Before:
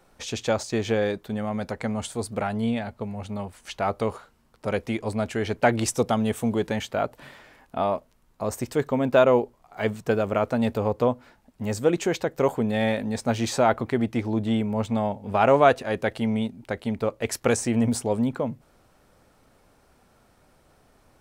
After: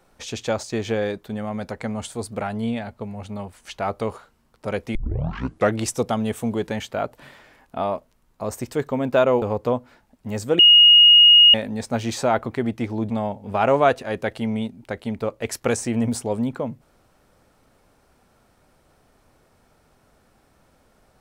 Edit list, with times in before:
4.95 s: tape start 0.82 s
9.42–10.77 s: delete
11.94–12.89 s: bleep 2.87 kHz -7.5 dBFS
14.45–14.90 s: delete

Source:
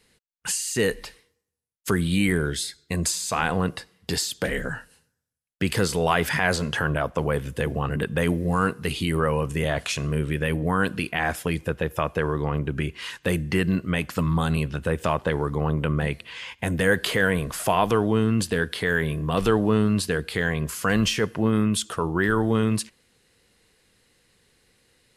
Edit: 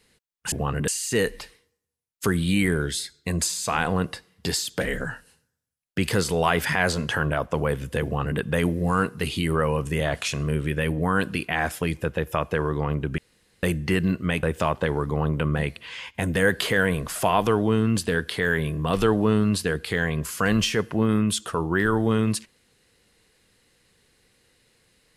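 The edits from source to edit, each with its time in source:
7.68–8.04 s: copy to 0.52 s
12.82–13.27 s: room tone
14.07–14.87 s: delete

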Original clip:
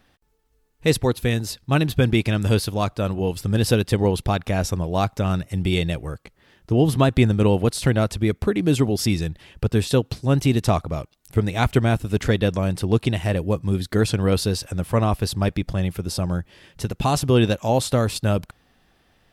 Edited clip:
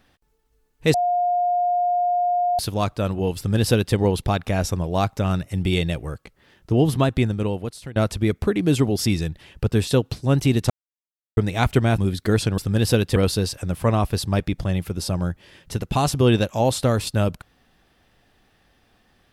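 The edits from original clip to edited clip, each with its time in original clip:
0.94–2.59 s: bleep 710 Hz -17.5 dBFS
3.37–3.95 s: copy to 14.25 s
6.76–7.96 s: fade out, to -20.5 dB
10.70–11.37 s: mute
11.98–13.65 s: delete

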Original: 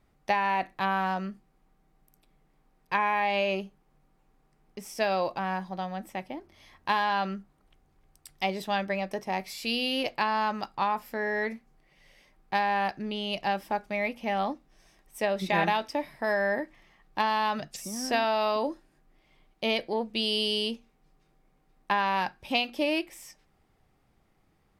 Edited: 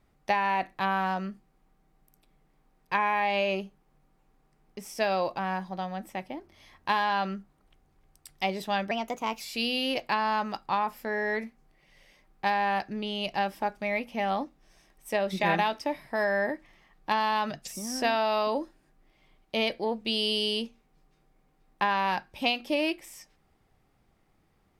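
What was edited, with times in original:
8.91–9.49 s: speed 118%

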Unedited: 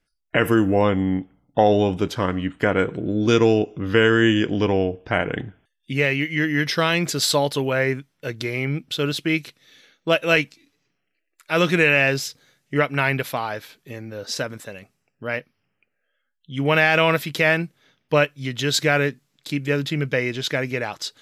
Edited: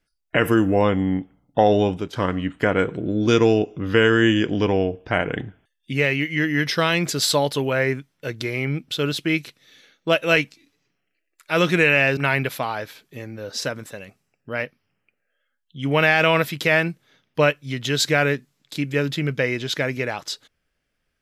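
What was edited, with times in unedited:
1.87–2.13 s: fade out, to -13 dB
12.17–12.91 s: delete

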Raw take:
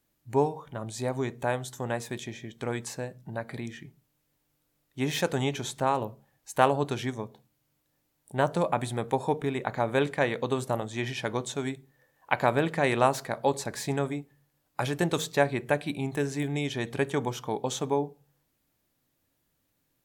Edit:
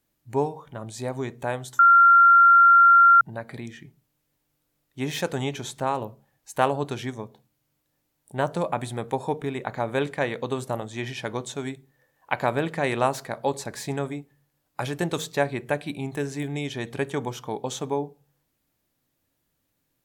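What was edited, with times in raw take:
1.79–3.21 s: bleep 1.38 kHz -10.5 dBFS

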